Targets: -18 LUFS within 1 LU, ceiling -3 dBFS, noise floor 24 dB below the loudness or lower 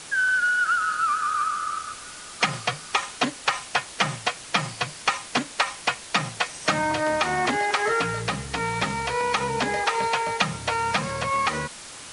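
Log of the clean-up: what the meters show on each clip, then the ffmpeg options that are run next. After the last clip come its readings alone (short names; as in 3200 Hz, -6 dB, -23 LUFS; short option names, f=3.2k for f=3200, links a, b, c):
noise floor -41 dBFS; noise floor target -49 dBFS; loudness -24.5 LUFS; peak -6.5 dBFS; loudness target -18.0 LUFS
-> -af "afftdn=nr=8:nf=-41"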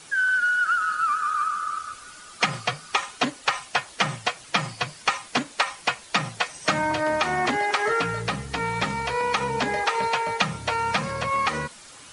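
noise floor -46 dBFS; noise floor target -49 dBFS
-> -af "afftdn=nr=6:nf=-46"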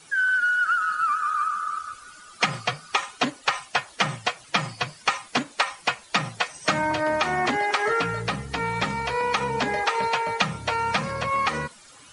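noise floor -50 dBFS; loudness -25.0 LUFS; peak -6.5 dBFS; loudness target -18.0 LUFS
-> -af "volume=7dB,alimiter=limit=-3dB:level=0:latency=1"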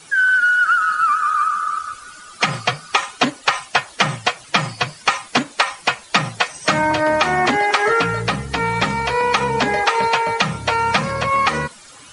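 loudness -18.0 LUFS; peak -3.0 dBFS; noise floor -43 dBFS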